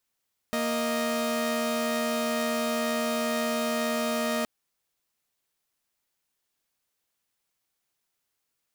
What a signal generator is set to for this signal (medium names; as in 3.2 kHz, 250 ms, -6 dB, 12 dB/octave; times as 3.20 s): chord A#3/D#5 saw, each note -26 dBFS 3.92 s